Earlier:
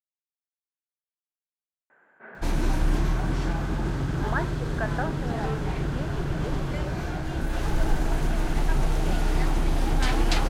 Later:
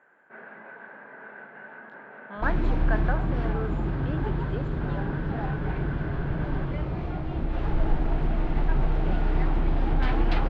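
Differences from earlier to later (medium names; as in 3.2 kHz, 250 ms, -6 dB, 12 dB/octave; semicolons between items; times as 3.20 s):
speech: entry -1.90 s; background: add distance through air 390 m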